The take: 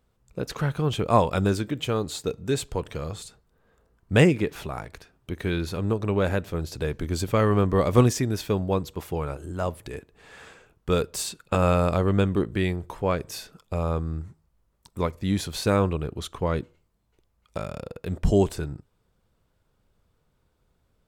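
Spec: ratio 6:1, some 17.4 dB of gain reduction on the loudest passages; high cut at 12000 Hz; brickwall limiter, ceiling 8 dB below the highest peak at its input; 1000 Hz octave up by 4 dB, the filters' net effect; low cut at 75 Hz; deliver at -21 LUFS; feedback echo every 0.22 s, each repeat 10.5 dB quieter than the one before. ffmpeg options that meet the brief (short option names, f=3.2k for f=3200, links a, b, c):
-af "highpass=75,lowpass=12k,equalizer=f=1k:t=o:g=5,acompressor=threshold=-31dB:ratio=6,alimiter=limit=-24dB:level=0:latency=1,aecho=1:1:220|440|660:0.299|0.0896|0.0269,volume=16.5dB"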